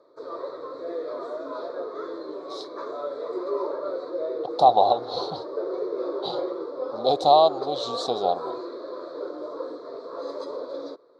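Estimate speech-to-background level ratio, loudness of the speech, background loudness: 11.0 dB, -22.0 LUFS, -33.0 LUFS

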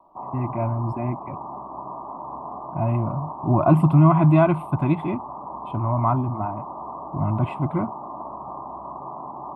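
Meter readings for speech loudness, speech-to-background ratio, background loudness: -22.0 LUFS, 13.0 dB, -35.0 LUFS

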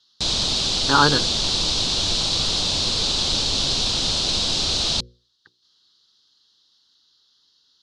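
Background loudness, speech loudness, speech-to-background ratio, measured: -20.0 LUFS, -20.0 LUFS, 0.0 dB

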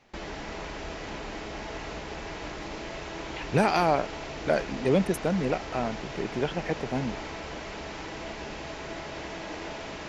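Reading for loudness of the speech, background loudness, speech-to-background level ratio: -28.5 LUFS, -37.5 LUFS, 9.0 dB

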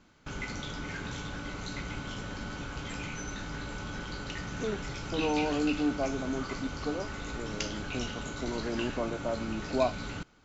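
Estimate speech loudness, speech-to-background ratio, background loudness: -34.5 LUFS, 3.5 dB, -38.0 LUFS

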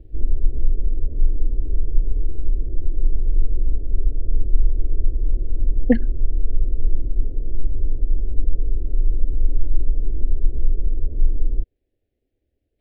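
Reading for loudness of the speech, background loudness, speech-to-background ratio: -22.0 LUFS, -27.0 LUFS, 5.0 dB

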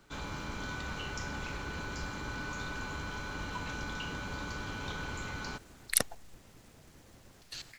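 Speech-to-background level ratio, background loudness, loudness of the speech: 7.0 dB, -39.5 LUFS, -32.5 LUFS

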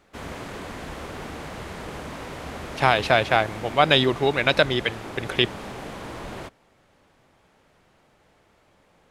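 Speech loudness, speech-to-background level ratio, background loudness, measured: -21.5 LUFS, 14.5 dB, -36.0 LUFS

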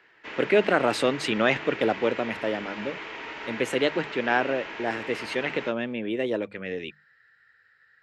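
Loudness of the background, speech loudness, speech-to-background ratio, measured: -36.5 LUFS, -27.0 LUFS, 9.5 dB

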